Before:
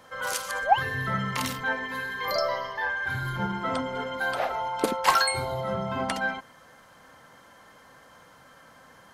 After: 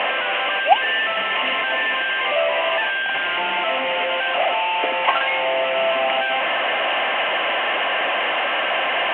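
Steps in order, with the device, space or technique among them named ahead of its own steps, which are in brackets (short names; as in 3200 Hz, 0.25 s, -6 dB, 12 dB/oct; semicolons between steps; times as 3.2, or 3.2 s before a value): digital answering machine (BPF 330–3100 Hz; delta modulation 16 kbps, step -18.5 dBFS; speaker cabinet 470–3000 Hz, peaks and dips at 470 Hz -5 dB, 680 Hz +6 dB, 970 Hz -5 dB, 1400 Hz -8 dB, 2900 Hz +10 dB); gain +5.5 dB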